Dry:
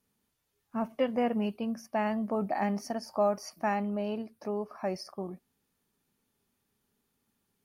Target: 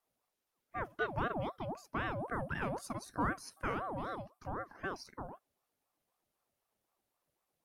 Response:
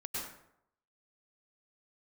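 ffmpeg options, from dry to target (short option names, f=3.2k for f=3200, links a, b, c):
-filter_complex "[0:a]asettb=1/sr,asplit=3[a][b][c];[a]atrim=end=2.194[d];[b]atrim=start=2.19:end=4.2,asetpts=PTS-STARTPTS,afade=t=in:d=0.004:c=qsin,afade=t=out:st=2.006:d=0.004:c=qsin,equalizer=f=9.7k:w=4.4:g=12.5[e];[c]atrim=start=4.196[f];[d][e]acrossfade=d=0.004:c1=hsin:c2=qsin[g];[g][f]acrossfade=d=0.004:c1=qsin:c2=hsin,aeval=exprs='val(0)*sin(2*PI*650*n/s+650*0.5/3.9*sin(2*PI*3.9*n/s))':c=same,volume=-4.5dB"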